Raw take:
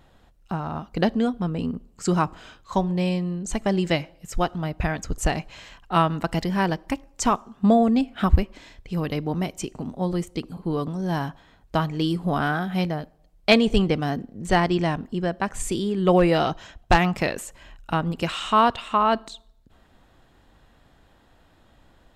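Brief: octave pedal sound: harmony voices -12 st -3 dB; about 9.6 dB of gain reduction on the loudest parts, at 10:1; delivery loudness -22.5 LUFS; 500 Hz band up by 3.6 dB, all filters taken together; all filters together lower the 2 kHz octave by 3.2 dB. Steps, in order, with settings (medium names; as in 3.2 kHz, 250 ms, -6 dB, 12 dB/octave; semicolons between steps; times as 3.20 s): peaking EQ 500 Hz +5 dB; peaking EQ 2 kHz -4.5 dB; compression 10:1, threshold -20 dBFS; harmony voices -12 st -3 dB; trim +3.5 dB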